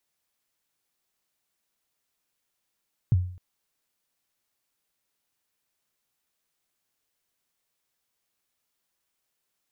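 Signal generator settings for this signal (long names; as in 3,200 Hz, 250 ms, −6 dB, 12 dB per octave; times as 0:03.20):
synth kick length 0.26 s, from 140 Hz, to 90 Hz, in 29 ms, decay 0.51 s, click off, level −14 dB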